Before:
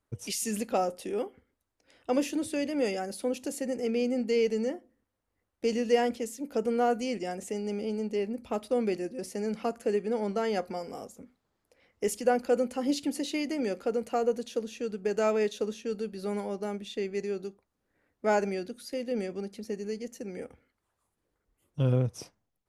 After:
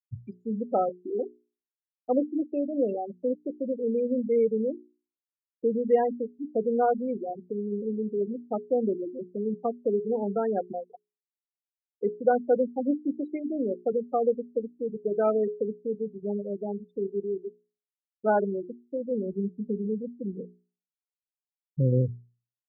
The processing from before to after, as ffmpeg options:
-filter_complex "[0:a]asettb=1/sr,asplit=3[a][b][c];[a]atrim=end=19.264[d];[b]atrim=start=19.26:end=21.8,asetpts=PTS-STARTPTS,afade=t=in:d=0.004:c=qsin,afade=t=out:st=2.536:d=0.004:c=qsin,equalizer=f=180:t=o:w=0.83:g=8[e];[c]atrim=start=21.796[f];[d][e]acrossfade=d=0.004:c1=hsin:c2=qsin[g];[g][f]acrossfade=d=0.004:c1=qsin:c2=hsin,afftfilt=real='re*gte(hypot(re,im),0.0891)':imag='im*gte(hypot(re,im),0.0891)':win_size=1024:overlap=0.75,lowpass=f=1.6k:w=0.5412,lowpass=f=1.6k:w=1.3066,bandreject=f=60:t=h:w=6,bandreject=f=120:t=h:w=6,bandreject=f=180:t=h:w=6,bandreject=f=240:t=h:w=6,bandreject=f=300:t=h:w=6,bandreject=f=360:t=h:w=6,bandreject=f=420:t=h:w=6,volume=3dB"

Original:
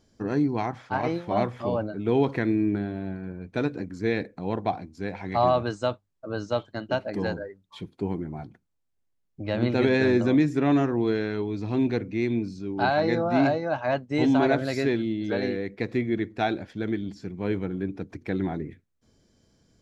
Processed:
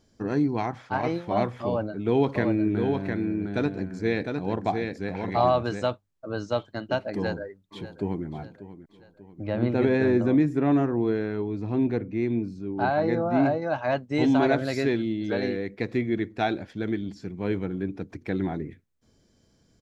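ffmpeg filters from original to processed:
-filter_complex "[0:a]asettb=1/sr,asplit=3[a][b][c];[a]atrim=end=1.654[d];[b]atrim=start=1.65:end=5.9,asetpts=PTS-STARTPTS,afade=t=in:d=0.004:c=qsin,afade=t=out:st=4.246:d=0.004:c=qsin,aecho=1:1:707:0.596,atrim=end_sample=187425[e];[c]atrim=start=5.896[f];[d][e]acrossfade=d=0.004:c1=hsin:c2=qsin[g];[g][f]acrossfade=d=0.004:c1=qsin:c2=hsin,asplit=2[h][i];[i]afade=t=in:st=7.12:d=0.01,afade=t=out:st=8.26:d=0.01,aecho=0:1:590|1180|1770|2360|2950:0.188365|0.0941825|0.0470912|0.0235456|0.0117728[j];[h][j]amix=inputs=2:normalize=0,asettb=1/sr,asplit=3[k][l][m];[k]atrim=end=9.474[n];[l]atrim=start=9.47:end=13.62,asetpts=PTS-STARTPTS,afade=t=in:d=0.004:c=qsin,afade=t=out:st=4.146:d=0.004:c=qsin,equalizer=f=5k:t=o:w=2.3:g=-10.5[o];[m]atrim=start=13.616[p];[n][o]acrossfade=d=0.004:c1=hsin:c2=qsin[q];[q][p]acrossfade=d=0.004:c1=qsin:c2=hsin"

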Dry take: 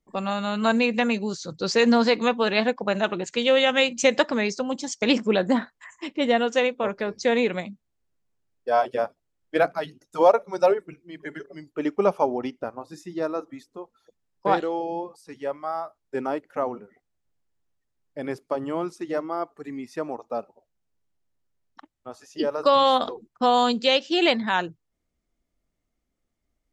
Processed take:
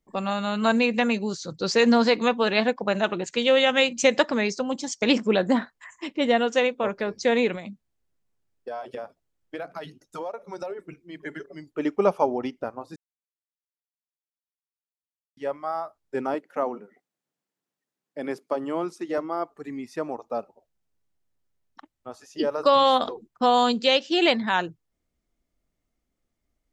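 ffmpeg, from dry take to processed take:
-filter_complex "[0:a]asettb=1/sr,asplit=3[a][b][c];[a]atrim=end=7.554[d];[b]atrim=start=7.55:end=10.79,asetpts=PTS-STARTPTS,afade=t=in:d=0.004:c=qsin,afade=t=out:st=3.236:d=0.004:c=qsin,acompressor=threshold=-31dB:ratio=6:attack=3.2:release=140:knee=1:detection=peak[e];[c]atrim=start=10.786[f];[d][e]acrossfade=d=0.004:c1=hsin:c2=qsin[g];[g][f]acrossfade=d=0.004:c1=qsin:c2=hsin,asettb=1/sr,asplit=3[h][i][j];[h]atrim=end=16.344[k];[i]atrim=start=16.34:end=19.18,asetpts=PTS-STARTPTS,afade=t=in:d=0.004:c=qsin,afade=t=out:st=2.836:d=0.004:c=qsin,highpass=f=170:w=0.5412,highpass=f=170:w=1.3066[l];[j]atrim=start=19.176[m];[k][l]acrossfade=d=0.004:c1=hsin:c2=qsin[n];[n][m]acrossfade=d=0.004:c1=qsin:c2=hsin,asplit=3[o][p][q];[o]atrim=end=12.96,asetpts=PTS-STARTPTS,afade=t=out:st=12.956:d=0.004:c=hsin[r];[p]atrim=start=12.96:end=15.37,asetpts=PTS-STARTPTS,volume=0[s];[q]atrim=start=15.37,asetpts=PTS-STARTPTS,afade=t=in:d=0.004:c=hsin[t];[r][s][t]concat=n=3:v=0:a=1"

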